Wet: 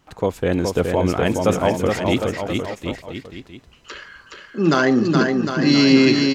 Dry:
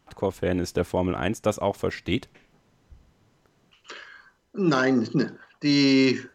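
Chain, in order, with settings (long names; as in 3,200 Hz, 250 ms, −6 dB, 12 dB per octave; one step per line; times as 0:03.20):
bouncing-ball delay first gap 420 ms, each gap 0.8×, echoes 5
level +5 dB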